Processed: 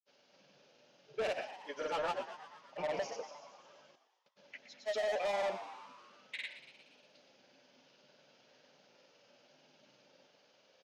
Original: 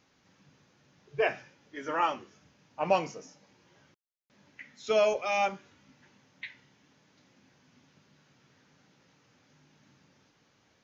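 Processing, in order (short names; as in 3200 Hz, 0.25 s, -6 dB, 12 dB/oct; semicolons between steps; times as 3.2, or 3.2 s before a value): speaker cabinet 310–6100 Hz, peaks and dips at 310 Hz -5 dB, 570 Hz +10 dB, 1100 Hz -7 dB, 1900 Hz -6 dB, 2900 Hz +4 dB, 4800 Hz +4 dB; limiter -19 dBFS, peak gain reduction 12 dB; soft clip -32 dBFS, distortion -8 dB; grains, pitch spread up and down by 0 st; frequency-shifting echo 0.118 s, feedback 62%, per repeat +100 Hz, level -12.5 dB; gain +1 dB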